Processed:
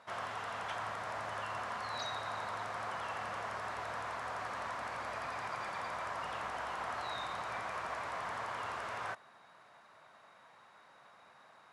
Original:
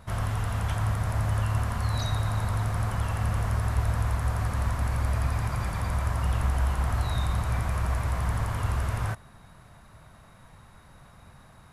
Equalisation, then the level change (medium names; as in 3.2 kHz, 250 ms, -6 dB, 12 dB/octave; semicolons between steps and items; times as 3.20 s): high-pass 520 Hz 12 dB/octave; distance through air 93 m; -2.0 dB